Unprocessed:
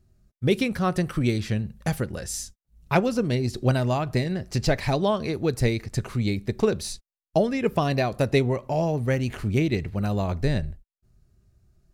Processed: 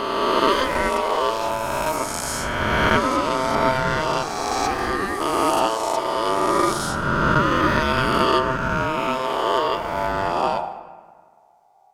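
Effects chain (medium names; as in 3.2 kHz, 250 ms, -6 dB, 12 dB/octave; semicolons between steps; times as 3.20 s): reverse spectral sustain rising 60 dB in 2.76 s; 4.23–5.21 s: static phaser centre 630 Hz, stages 6; plate-style reverb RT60 1.6 s, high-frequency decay 0.55×, DRR 10 dB; ring modulator 780 Hz; trim +1.5 dB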